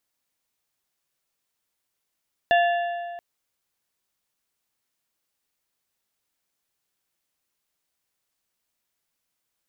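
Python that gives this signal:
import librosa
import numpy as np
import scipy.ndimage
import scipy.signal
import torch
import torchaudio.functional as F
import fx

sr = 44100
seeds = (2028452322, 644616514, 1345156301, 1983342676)

y = fx.strike_metal(sr, length_s=0.68, level_db=-15.0, body='plate', hz=694.0, decay_s=2.05, tilt_db=6.0, modes=4)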